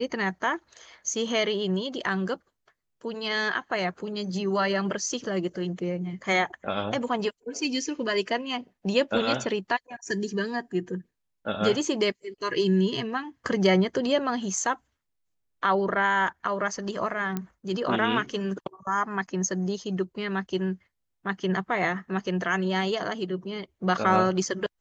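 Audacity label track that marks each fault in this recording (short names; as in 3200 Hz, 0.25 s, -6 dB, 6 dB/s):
17.370000	17.370000	pop -16 dBFS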